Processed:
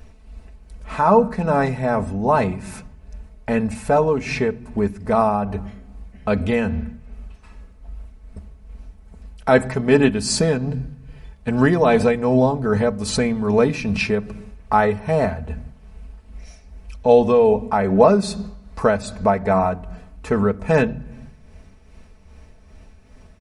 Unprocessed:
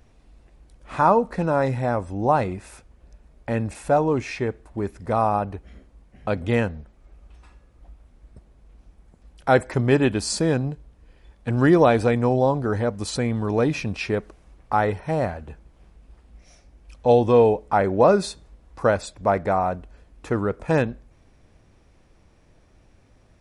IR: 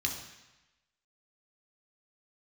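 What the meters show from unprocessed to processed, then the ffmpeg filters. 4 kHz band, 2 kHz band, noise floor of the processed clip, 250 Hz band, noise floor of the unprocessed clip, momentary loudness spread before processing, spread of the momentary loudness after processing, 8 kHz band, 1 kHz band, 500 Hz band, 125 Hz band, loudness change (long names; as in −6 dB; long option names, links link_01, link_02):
+4.0 dB, +3.5 dB, −48 dBFS, +4.0 dB, −57 dBFS, 13 LU, 16 LU, +4.5 dB, +2.0 dB, +3.5 dB, +1.5 dB, +3.0 dB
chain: -filter_complex "[0:a]aecho=1:1:4.6:0.66,asplit=2[link_01][link_02];[link_02]bass=frequency=250:gain=14,treble=frequency=4000:gain=5[link_03];[1:a]atrim=start_sample=2205,lowpass=3700[link_04];[link_03][link_04]afir=irnorm=-1:irlink=0,volume=-19.5dB[link_05];[link_01][link_05]amix=inputs=2:normalize=0,tremolo=f=2.5:d=0.48,asplit=2[link_06][link_07];[link_07]acompressor=threshold=-27dB:ratio=6,volume=0dB[link_08];[link_06][link_08]amix=inputs=2:normalize=0,equalizer=frequency=3400:width_type=o:width=0.23:gain=-4.5,volume=1dB"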